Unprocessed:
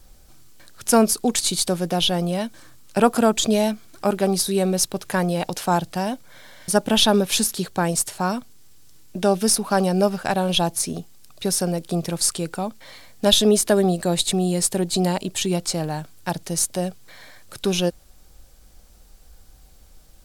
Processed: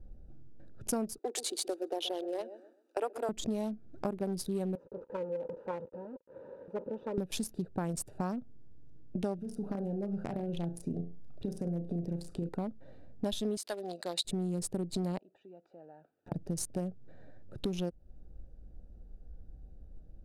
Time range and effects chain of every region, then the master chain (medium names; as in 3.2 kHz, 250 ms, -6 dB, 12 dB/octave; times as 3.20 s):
1.18–3.29 s: steep high-pass 320 Hz 48 dB/octave + feedback delay 128 ms, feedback 27%, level -13 dB
4.75–7.18 s: one-bit delta coder 64 kbps, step -18 dBFS + two resonant band-passes 710 Hz, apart 0.9 oct + tape noise reduction on one side only decoder only
9.35–12.49 s: compression 10:1, threshold -25 dBFS + flutter echo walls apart 6 m, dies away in 0.31 s
13.57–14.25 s: high-pass 810 Hz + peaking EQ 4.3 kHz +10 dB 0.79 oct
15.18–16.32 s: compression 5:1, threshold -34 dBFS + band-pass 690–2600 Hz + integer overflow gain 29.5 dB
whole clip: local Wiener filter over 41 samples; tilt shelf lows +4.5 dB, about 880 Hz; compression 6:1, threshold -28 dBFS; trim -4 dB